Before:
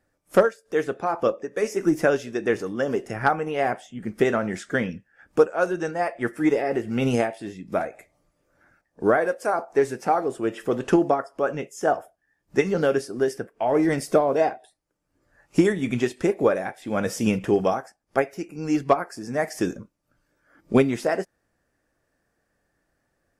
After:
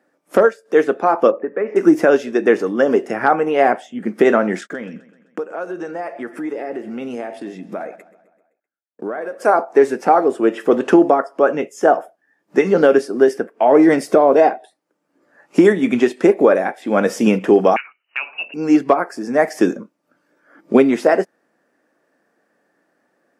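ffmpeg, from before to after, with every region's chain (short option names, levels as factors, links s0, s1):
-filter_complex "[0:a]asettb=1/sr,asplit=3[s0][s1][s2];[s0]atrim=end=1.314[s3];[s1]atrim=start=1.31:end=1.76,asetpts=PTS-STARTPTS,afade=t=in:d=0.004:c=qsin,afade=t=out:st=0.446:d=0.004:c=qsin,lowpass=f=2200:w=0.5412,lowpass=f=2200:w=1.3066,acompressor=threshold=0.0501:ratio=5:attack=3.2:release=140:knee=1:detection=peak[s4];[s2]atrim=start=1.756[s5];[s3][s4]acrossfade=d=0.004:c1=hsin:c2=qsin[s6];[s6][s5]acrossfade=d=0.004:c1=qsin:c2=hsin,asettb=1/sr,asplit=3[s7][s8][s9];[s7]atrim=end=4.614[s10];[s8]atrim=start=4.61:end=9.43,asetpts=PTS-STARTPTS,afade=t=in:d=0.004:c=qsin,afade=t=out:st=4.816:d=0.004:c=qsin,agate=range=0.00891:threshold=0.00447:ratio=16:release=100:detection=peak,acompressor=threshold=0.0178:ratio=4:attack=3.2:release=140:knee=1:detection=peak,aecho=1:1:129|258|387|516|645:0.119|0.0666|0.0373|0.0209|0.0117,atrim=end_sample=212562[s11];[s9]atrim=start=9.426[s12];[s10][s11]acrossfade=d=0.004:c1=hsin:c2=qsin[s13];[s13][s12]acrossfade=d=0.004:c1=qsin:c2=hsin,asettb=1/sr,asplit=3[s14][s15][s16];[s14]atrim=end=17.764[s17];[s15]atrim=start=17.76:end=18.54,asetpts=PTS-STARTPTS,afade=t=in:d=0.004:c=qsin,afade=t=out:st=0.776:d=0.004:c=qsin,lowpass=f=2600:t=q:w=0.5098,lowpass=f=2600:t=q:w=0.6013,lowpass=f=2600:t=q:w=0.9,lowpass=f=2600:t=q:w=2.563,afreqshift=-3000,acompressor=threshold=0.0501:ratio=6:attack=3.2:release=140:knee=1:detection=peak,bandreject=f=50:t=h:w=6,bandreject=f=100:t=h:w=6,bandreject=f=150:t=h:w=6,bandreject=f=200:t=h:w=6,bandreject=f=250:t=h:w=6,bandreject=f=300:t=h:w=6,bandreject=f=350:t=h:w=6,bandreject=f=400:t=h:w=6,bandreject=f=450:t=h:w=6,bandreject=f=500:t=h:w=6[s18];[s16]atrim=start=18.536[s19];[s17][s18]acrossfade=d=0.004:c1=hsin:c2=qsin[s20];[s20][s19]acrossfade=d=0.004:c1=qsin:c2=hsin,highpass=f=210:w=0.5412,highpass=f=210:w=1.3066,highshelf=f=3300:g=-10.5,alimiter=level_in=3.76:limit=0.891:release=50:level=0:latency=1,volume=0.891"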